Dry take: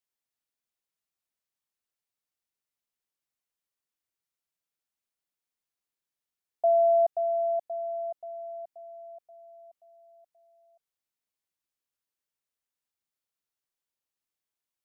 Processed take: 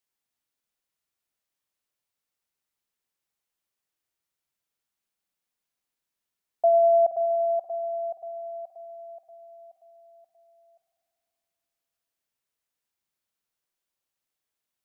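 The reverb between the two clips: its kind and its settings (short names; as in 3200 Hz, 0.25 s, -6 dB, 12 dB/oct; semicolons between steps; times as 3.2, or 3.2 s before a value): spring tank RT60 3.4 s, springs 48 ms, chirp 35 ms, DRR 6.5 dB; gain +3.5 dB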